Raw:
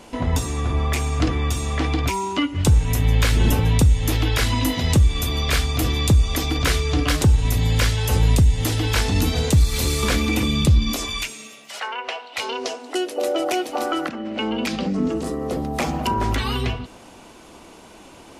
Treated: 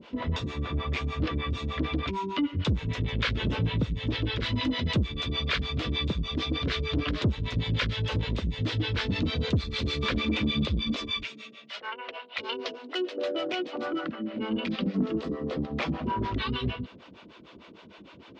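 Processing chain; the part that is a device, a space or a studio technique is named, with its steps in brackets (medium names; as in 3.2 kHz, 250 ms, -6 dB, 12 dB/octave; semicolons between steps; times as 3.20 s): guitar amplifier with harmonic tremolo (harmonic tremolo 6.6 Hz, depth 100%, crossover 460 Hz; saturation -19 dBFS, distortion -10 dB; cabinet simulation 80–4100 Hz, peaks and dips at 200 Hz +3 dB, 780 Hz -10 dB, 3.5 kHz +3 dB)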